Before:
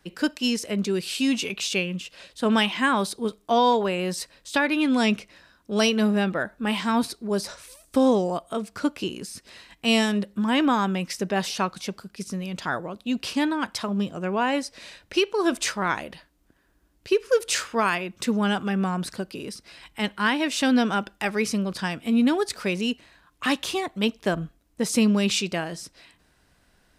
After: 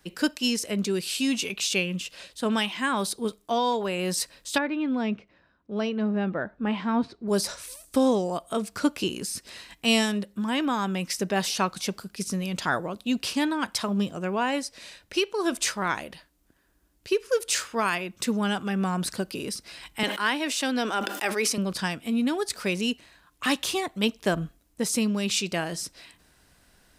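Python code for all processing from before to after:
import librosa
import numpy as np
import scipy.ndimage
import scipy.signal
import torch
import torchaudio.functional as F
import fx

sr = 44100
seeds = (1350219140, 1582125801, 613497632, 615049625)

y = fx.chain(x, sr, fx.highpass(hz=49.0, slope=12),
    fx.spacing_loss(db_at_10k=37), at=(4.58, 7.28))
y = fx.chain(y, sr, fx.highpass(hz=270.0, slope=24),
    fx.sustainer(db_per_s=63.0), at=(20.03, 21.58))
y = fx.rider(y, sr, range_db=4, speed_s=0.5)
y = fx.high_shelf(y, sr, hz=5300.0, db=7.0)
y = y * 10.0 ** (-2.5 / 20.0)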